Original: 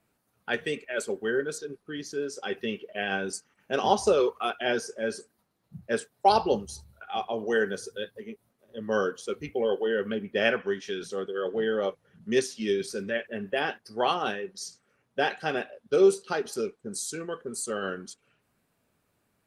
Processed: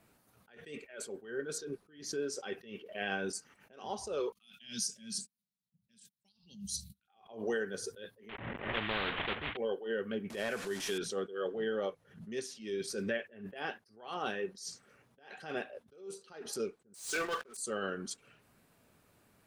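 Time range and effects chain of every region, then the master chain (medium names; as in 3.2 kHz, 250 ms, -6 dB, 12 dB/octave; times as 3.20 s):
4.32–7.08 s: gate -55 dBFS, range -34 dB + FFT filter 100 Hz 0 dB, 200 Hz +13 dB, 380 Hz -20 dB, 770 Hz -24 dB, 1.3 kHz -15 dB, 3.6 kHz +13 dB
8.29–9.57 s: CVSD coder 16 kbps + peaking EQ 1.9 kHz +7.5 dB 0.29 oct + spectrum-flattening compressor 4:1
10.30–10.98 s: one-bit delta coder 64 kbps, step -36.5 dBFS + compression 3:1, threshold -27 dBFS + peaking EQ 7.7 kHz +2.5 dB 2.2 oct
16.94–17.57 s: high-pass 780 Hz + waveshaping leveller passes 5
whole clip: compression 10:1, threshold -37 dBFS; attacks held to a fixed rise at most 120 dB/s; trim +6 dB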